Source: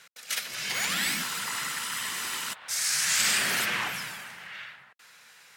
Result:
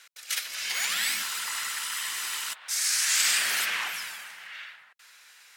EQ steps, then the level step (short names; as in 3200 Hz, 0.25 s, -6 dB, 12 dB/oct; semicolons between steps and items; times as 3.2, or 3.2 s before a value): HPF 1400 Hz 6 dB/oct; +1.5 dB